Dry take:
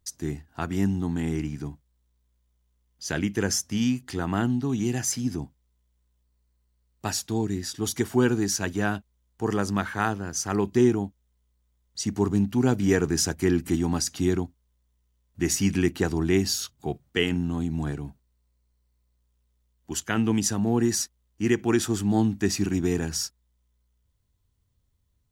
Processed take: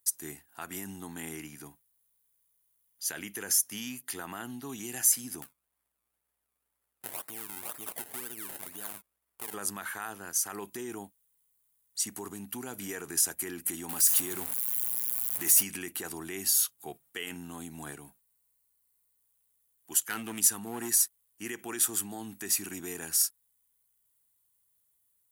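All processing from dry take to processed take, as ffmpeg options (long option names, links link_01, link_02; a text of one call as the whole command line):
ffmpeg -i in.wav -filter_complex "[0:a]asettb=1/sr,asplit=3[link_01][link_02][link_03];[link_01]atrim=end=1.084[link_04];[link_02]atrim=start=1.08:end=4.76,asetpts=PTS-STARTPTS,afade=type=in:duration=0.004:curve=qsin,afade=type=out:start_time=3.676:duration=0.004:curve=qsin,highpass=41,bandreject=frequency=8000:width=8.1[link_05];[link_03]atrim=start=4.756[link_06];[link_04][link_05]acrossfade=duration=0.004:curve1=hsin:curve2=qsin[link_07];[link_07][link_06]acrossfade=duration=0.004:curve1=qsin:curve2=hsin,asettb=1/sr,asplit=3[link_08][link_09][link_10];[link_08]atrim=end=5.424[link_11];[link_09]atrim=start=5.42:end=9.54,asetpts=PTS-STARTPTS,afade=type=in:duration=0.004:curve=qsin,afade=type=out:start_time=4.116:duration=0.004:curve=qsin,acompressor=threshold=-32dB:ratio=10:attack=3.2:release=140:knee=1:detection=peak,acrusher=samples=26:mix=1:aa=0.000001:lfo=1:lforange=26:lforate=2[link_12];[link_10]atrim=start=9.536[link_13];[link_11][link_12]acrossfade=duration=0.004:curve1=hsin:curve2=qsin[link_14];[link_14][link_13]acrossfade=duration=0.004:curve1=qsin:curve2=hsin,asettb=1/sr,asplit=3[link_15][link_16][link_17];[link_15]atrim=end=13.894[link_18];[link_16]atrim=start=13.89:end=15.63,asetpts=PTS-STARTPTS,afade=type=in:duration=0.004:curve=qsin,afade=type=out:start_time=1.736:duration=0.004:curve=qsin,aeval=exprs='val(0)+0.5*0.0266*sgn(val(0))':channel_layout=same,highshelf=frequency=11000:gain=5.5[link_19];[link_17]atrim=start=15.626[link_20];[link_18][link_19]acrossfade=duration=0.004:curve1=hsin:curve2=qsin[link_21];[link_21][link_20]acrossfade=duration=0.004:curve1=qsin:curve2=hsin,asettb=1/sr,asplit=3[link_22][link_23][link_24];[link_22]atrim=end=20.084[link_25];[link_23]atrim=start=20.08:end=20.94,asetpts=PTS-STARTPTS,afade=type=in:duration=0.004:curve=qsin,afade=type=out:start_time=0.856:duration=0.004:curve=qsin,equalizer=frequency=600:width=4.7:gain=-13,volume=18dB,asoftclip=hard,volume=-18dB[link_26];[link_24]atrim=start=20.936[link_27];[link_25][link_26]acrossfade=duration=0.004:curve1=hsin:curve2=qsin[link_28];[link_28][link_27]acrossfade=duration=0.004:curve1=qsin:curve2=hsin,alimiter=limit=-19dB:level=0:latency=1:release=51,highpass=frequency=1300:poles=1,highshelf=frequency=7800:width_type=q:width=1.5:gain=13.5" out.wav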